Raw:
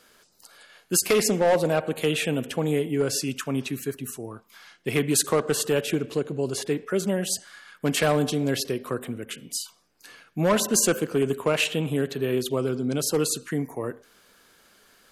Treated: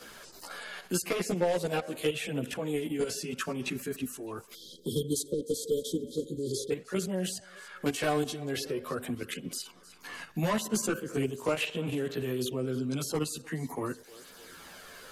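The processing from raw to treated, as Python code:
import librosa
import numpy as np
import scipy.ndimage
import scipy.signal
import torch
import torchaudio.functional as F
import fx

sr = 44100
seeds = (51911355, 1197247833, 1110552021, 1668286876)

y = fx.level_steps(x, sr, step_db=11)
y = fx.echo_thinned(y, sr, ms=302, feedback_pct=41, hz=520.0, wet_db=-23.0)
y = fx.spec_erase(y, sr, start_s=4.53, length_s=2.17, low_hz=560.0, high_hz=3100.0)
y = fx.chorus_voices(y, sr, voices=2, hz=0.21, base_ms=14, depth_ms=3.0, mix_pct=60)
y = fx.band_squash(y, sr, depth_pct=70)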